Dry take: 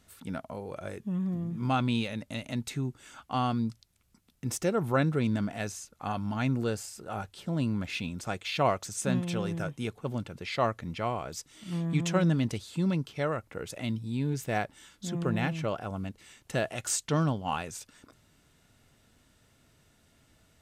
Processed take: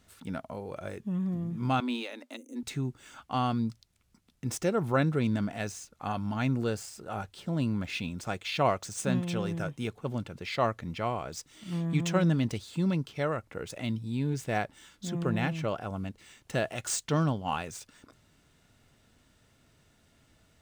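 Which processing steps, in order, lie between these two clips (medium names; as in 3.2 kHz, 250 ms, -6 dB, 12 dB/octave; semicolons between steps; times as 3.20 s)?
median filter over 3 samples; 1.80–2.63 s: rippled Chebyshev high-pass 240 Hz, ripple 3 dB; 2.36–2.56 s: time-frequency box 550–5900 Hz -26 dB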